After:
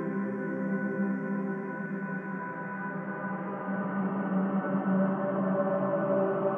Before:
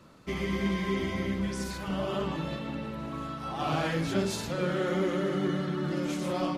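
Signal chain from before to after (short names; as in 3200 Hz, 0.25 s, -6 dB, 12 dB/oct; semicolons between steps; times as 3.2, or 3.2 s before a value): elliptic band-pass 160–1700 Hz, stop band 40 dB; Paulstretch 12×, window 0.25 s, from 1.54; gain +3.5 dB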